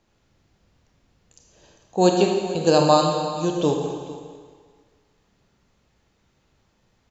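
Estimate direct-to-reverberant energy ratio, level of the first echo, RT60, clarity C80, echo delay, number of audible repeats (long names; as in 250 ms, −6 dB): 1.5 dB, −17.0 dB, 1.7 s, 4.0 dB, 449 ms, 1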